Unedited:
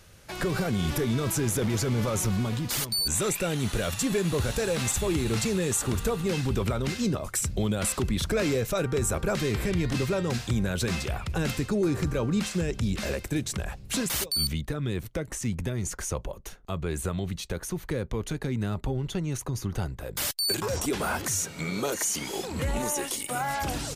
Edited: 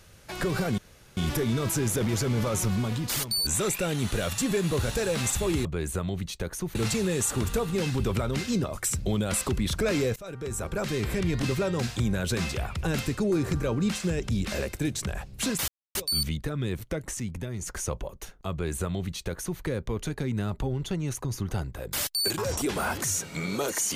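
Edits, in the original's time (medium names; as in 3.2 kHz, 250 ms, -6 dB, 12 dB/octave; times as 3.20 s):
0.78 s: insert room tone 0.39 s
8.67–10.00 s: fade in equal-power, from -18 dB
14.19 s: insert silence 0.27 s
15.44–15.90 s: gain -4 dB
16.75–17.85 s: copy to 5.26 s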